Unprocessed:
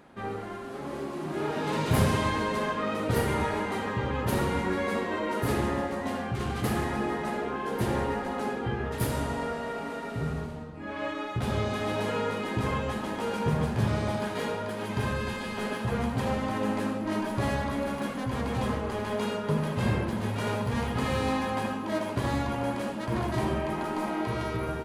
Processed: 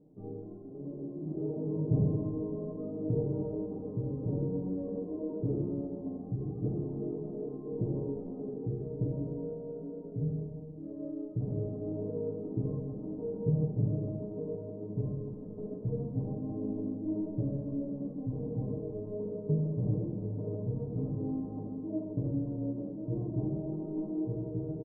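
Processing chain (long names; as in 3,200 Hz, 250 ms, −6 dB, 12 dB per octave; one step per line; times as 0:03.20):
inverse Chebyshev low-pass filter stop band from 2,100 Hz, stop band 70 dB
comb filter 6.6 ms, depth 98%
level −5.5 dB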